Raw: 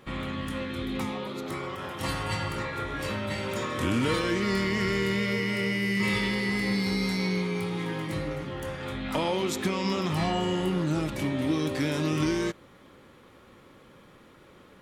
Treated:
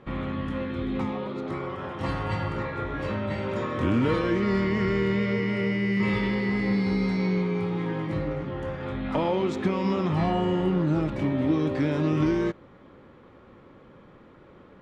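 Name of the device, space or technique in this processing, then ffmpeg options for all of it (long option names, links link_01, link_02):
through cloth: -af "lowpass=6700,highshelf=frequency=2800:gain=-17,volume=3.5dB"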